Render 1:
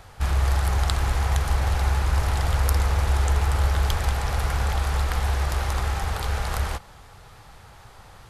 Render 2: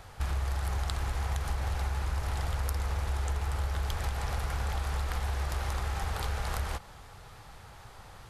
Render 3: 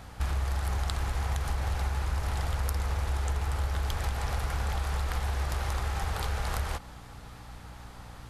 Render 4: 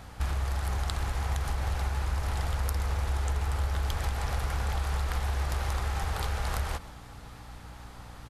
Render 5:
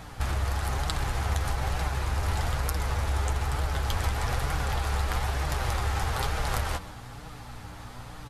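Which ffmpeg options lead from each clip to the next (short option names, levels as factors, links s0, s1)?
-af "acompressor=threshold=0.0501:ratio=5,volume=0.75"
-af "aeval=exprs='val(0)+0.00355*(sin(2*PI*60*n/s)+sin(2*PI*2*60*n/s)/2+sin(2*PI*3*60*n/s)/3+sin(2*PI*4*60*n/s)/4+sin(2*PI*5*60*n/s)/5)':c=same,volume=1.19"
-af "aecho=1:1:130:0.133"
-af "flanger=delay=6.2:depth=4.2:regen=32:speed=1.1:shape=triangular,volume=2.51"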